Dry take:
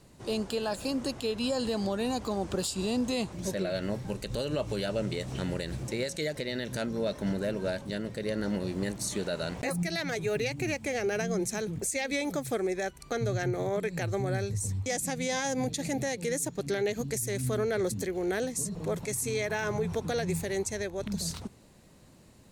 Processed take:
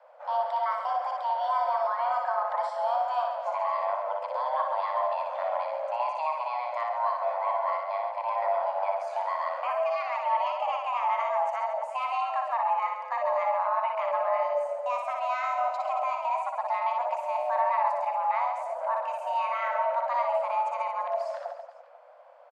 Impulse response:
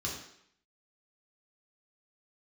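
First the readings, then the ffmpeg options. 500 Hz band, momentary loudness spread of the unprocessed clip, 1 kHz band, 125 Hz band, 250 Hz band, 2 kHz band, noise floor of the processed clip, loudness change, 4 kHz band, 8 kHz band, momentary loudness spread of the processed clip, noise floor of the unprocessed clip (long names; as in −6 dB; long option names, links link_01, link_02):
+1.0 dB, 4 LU, +16.0 dB, below −40 dB, below −40 dB, −2.0 dB, −44 dBFS, +3.0 dB, −10.5 dB, below −25 dB, 4 LU, −55 dBFS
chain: -filter_complex "[0:a]lowpass=1300,afreqshift=480,asplit=2[link_01][link_02];[link_02]aecho=0:1:60|135|228.8|345.9|492.4:0.631|0.398|0.251|0.158|0.1[link_03];[link_01][link_03]amix=inputs=2:normalize=0,volume=1.5dB"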